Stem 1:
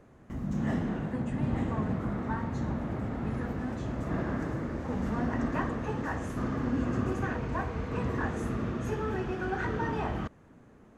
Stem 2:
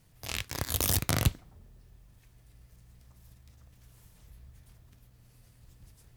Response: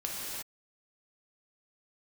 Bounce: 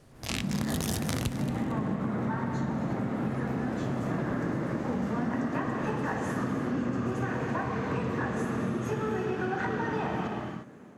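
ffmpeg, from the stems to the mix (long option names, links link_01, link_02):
-filter_complex "[0:a]highpass=frequency=110:width=0.5412,highpass=frequency=110:width=1.3066,dynaudnorm=framelen=100:gausssize=3:maxgain=9dB,volume=-7dB,asplit=2[link_01][link_02];[link_02]volume=-3.5dB[link_03];[1:a]lowpass=10000,volume=3dB,asplit=3[link_04][link_05][link_06];[link_05]volume=-19dB[link_07];[link_06]volume=-12.5dB[link_08];[2:a]atrim=start_sample=2205[link_09];[link_03][link_07]amix=inputs=2:normalize=0[link_10];[link_10][link_09]afir=irnorm=-1:irlink=0[link_11];[link_08]aecho=0:1:227|454|681|908:1|0.31|0.0961|0.0298[link_12];[link_01][link_04][link_11][link_12]amix=inputs=4:normalize=0,acompressor=threshold=-27dB:ratio=6"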